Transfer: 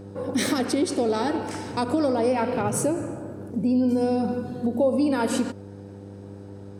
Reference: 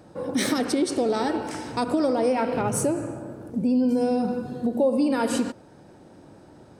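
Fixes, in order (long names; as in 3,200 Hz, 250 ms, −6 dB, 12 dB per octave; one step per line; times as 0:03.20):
hum removal 99.5 Hz, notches 5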